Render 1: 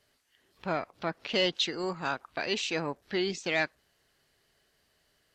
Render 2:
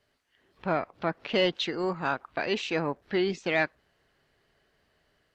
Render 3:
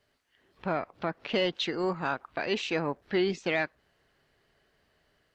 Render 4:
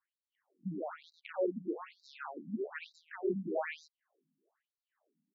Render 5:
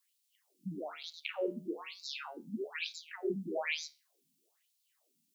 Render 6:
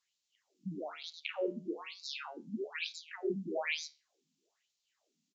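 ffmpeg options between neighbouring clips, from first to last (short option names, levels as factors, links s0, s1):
-filter_complex "[0:a]highshelf=f=4800:g=-11.5,acrossover=split=3000[s0][s1];[s0]dynaudnorm=f=210:g=3:m=1.58[s2];[s2][s1]amix=inputs=2:normalize=0"
-af "alimiter=limit=0.141:level=0:latency=1:release=238"
-af "adynamicsmooth=sensitivity=2:basefreq=1200,aecho=1:1:99.13|227.4:0.562|0.447,afftfilt=real='re*between(b*sr/1024,200*pow(5400/200,0.5+0.5*sin(2*PI*1.1*pts/sr))/1.41,200*pow(5400/200,0.5+0.5*sin(2*PI*1.1*pts/sr))*1.41)':imag='im*between(b*sr/1024,200*pow(5400/200,0.5+0.5*sin(2*PI*1.1*pts/sr))/1.41,200*pow(5400/200,0.5+0.5*sin(2*PI*1.1*pts/sr))*1.41)':win_size=1024:overlap=0.75,volume=0.794"
-filter_complex "[0:a]flanger=delay=7.7:depth=6.1:regen=-77:speed=0.38:shape=triangular,acrossover=split=140[s0][s1];[s1]aexciter=amount=6.5:drive=5.7:freq=2300[s2];[s0][s2]amix=inputs=2:normalize=0,volume=1.33"
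-af "aresample=16000,aresample=44100"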